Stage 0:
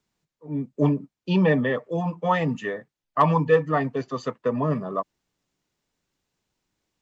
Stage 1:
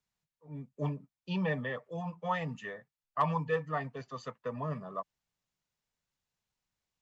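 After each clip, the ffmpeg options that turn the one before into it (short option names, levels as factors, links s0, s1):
-af "equalizer=f=320:t=o:w=1:g=-11,volume=0.355"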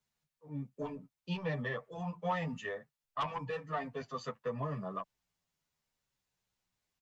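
-filter_complex "[0:a]aeval=exprs='0.158*sin(PI/2*2.24*val(0)/0.158)':c=same,acompressor=threshold=0.0708:ratio=6,asplit=2[s0][s1];[s1]adelay=9.8,afreqshift=-0.71[s2];[s0][s2]amix=inputs=2:normalize=1,volume=0.501"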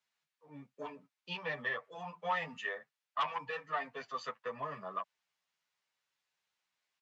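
-af "bandpass=f=2100:t=q:w=0.61:csg=0,volume=1.68"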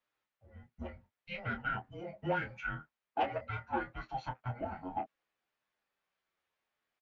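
-filter_complex "[0:a]bass=f=250:g=-9,treble=f=4000:g=-12,afreqshift=-370,asplit=2[s0][s1];[s1]adelay=25,volume=0.422[s2];[s0][s2]amix=inputs=2:normalize=0,volume=1.12"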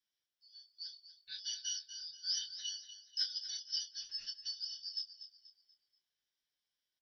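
-filter_complex "[0:a]afftfilt=real='real(if(lt(b,272),68*(eq(floor(b/68),0)*3+eq(floor(b/68),1)*2+eq(floor(b/68),2)*1+eq(floor(b/68),3)*0)+mod(b,68),b),0)':imag='imag(if(lt(b,272),68*(eq(floor(b/68),0)*3+eq(floor(b/68),1)*2+eq(floor(b/68),2)*1+eq(floor(b/68),3)*0)+mod(b,68),b),0)':win_size=2048:overlap=0.75,asplit=2[s0][s1];[s1]aecho=0:1:241|482|723|964:0.251|0.0904|0.0326|0.0117[s2];[s0][s2]amix=inputs=2:normalize=0,volume=0.631"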